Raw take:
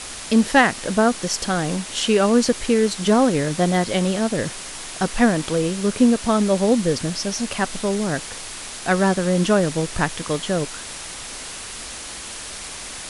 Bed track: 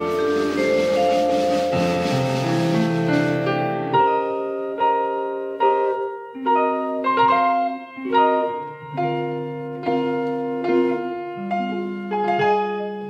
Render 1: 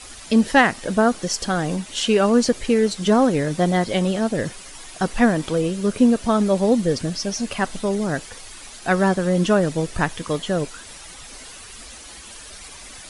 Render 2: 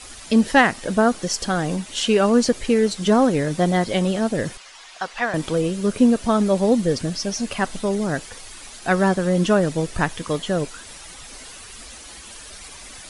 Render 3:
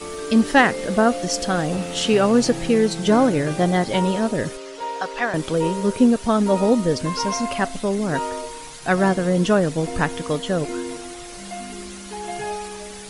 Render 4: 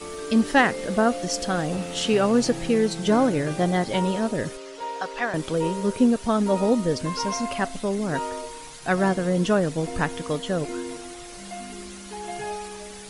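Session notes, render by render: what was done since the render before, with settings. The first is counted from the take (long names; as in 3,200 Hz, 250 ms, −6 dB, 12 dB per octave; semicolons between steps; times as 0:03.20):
broadband denoise 10 dB, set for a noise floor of −34 dBFS
0:04.57–0:05.34: three-way crossover with the lows and the highs turned down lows −20 dB, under 590 Hz, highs −17 dB, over 6,300 Hz
mix in bed track −10.5 dB
level −3.5 dB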